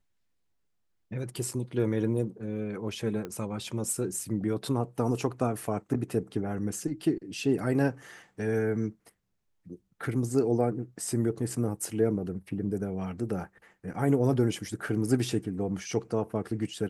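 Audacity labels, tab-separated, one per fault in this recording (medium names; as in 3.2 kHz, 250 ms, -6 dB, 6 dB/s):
3.250000	3.250000	pop -23 dBFS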